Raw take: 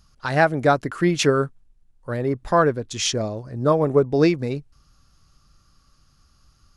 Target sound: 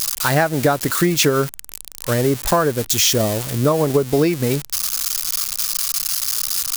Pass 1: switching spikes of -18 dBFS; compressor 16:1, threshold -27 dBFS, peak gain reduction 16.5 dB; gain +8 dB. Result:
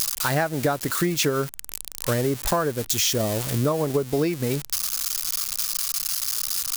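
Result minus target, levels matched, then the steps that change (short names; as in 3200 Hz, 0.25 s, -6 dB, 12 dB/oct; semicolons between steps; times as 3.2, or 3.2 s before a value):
compressor: peak gain reduction +6.5 dB
change: compressor 16:1, threshold -20 dBFS, peak gain reduction 10 dB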